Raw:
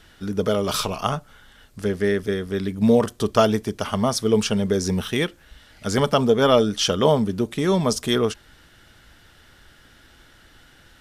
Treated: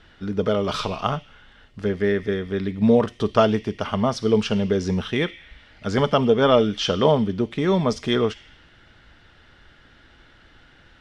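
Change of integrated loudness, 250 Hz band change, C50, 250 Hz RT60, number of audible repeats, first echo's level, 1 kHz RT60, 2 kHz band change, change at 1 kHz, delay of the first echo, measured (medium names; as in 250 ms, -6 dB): -0.5 dB, 0.0 dB, 13.0 dB, 1.9 s, no echo, no echo, 1.2 s, 0.0 dB, 0.0 dB, no echo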